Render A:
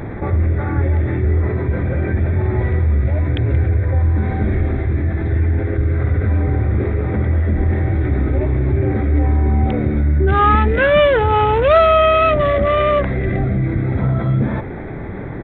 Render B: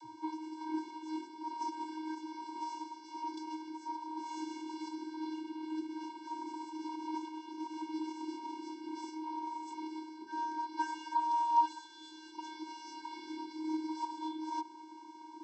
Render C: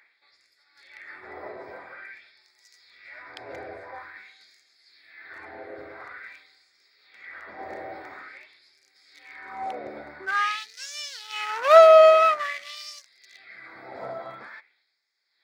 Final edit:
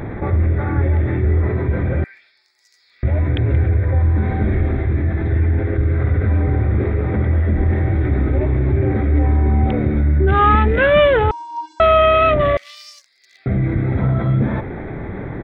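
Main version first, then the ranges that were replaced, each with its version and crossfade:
A
2.04–3.03 from C
11.31–11.8 from B
12.57–13.46 from C

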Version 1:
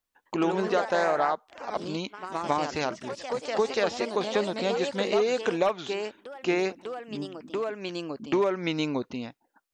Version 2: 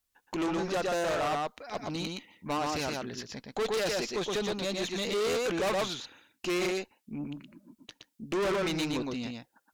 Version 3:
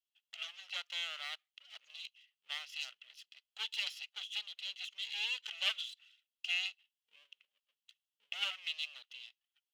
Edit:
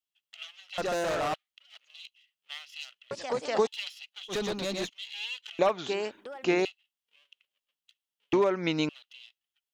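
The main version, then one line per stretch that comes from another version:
3
0.78–1.34 from 2
3.11–3.67 from 1
4.31–4.87 from 2, crossfade 0.06 s
5.59–6.65 from 1
8.33–8.89 from 1

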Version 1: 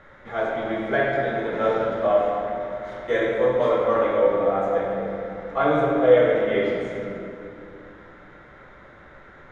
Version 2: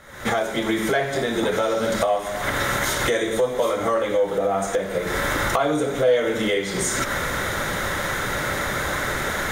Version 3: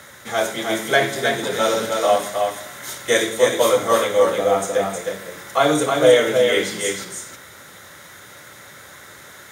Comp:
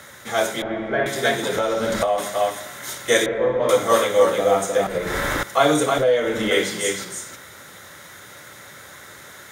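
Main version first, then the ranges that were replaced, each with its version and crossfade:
3
0.62–1.06 from 1
1.56–2.18 from 2
3.26–3.69 from 1
4.87–5.43 from 2
5.98–6.51 from 2

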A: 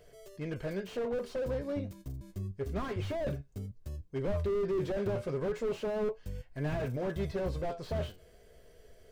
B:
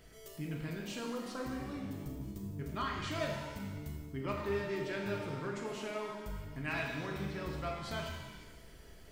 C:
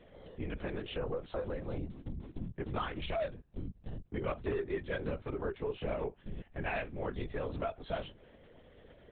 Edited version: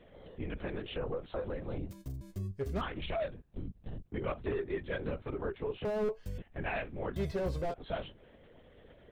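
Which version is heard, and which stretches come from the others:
C
1.89–2.81 from A
5.85–6.38 from A
7.16–7.74 from A
not used: B

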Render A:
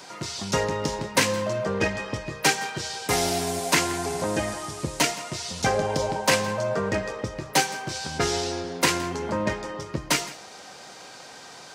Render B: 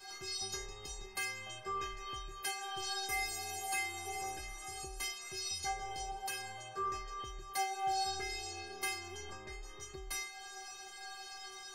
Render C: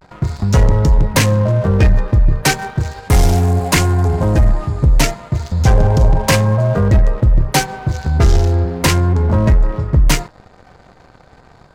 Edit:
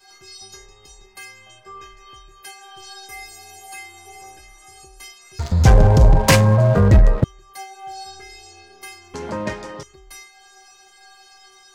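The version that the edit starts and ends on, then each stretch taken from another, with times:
B
5.39–7.24 from C
9.14–9.83 from A

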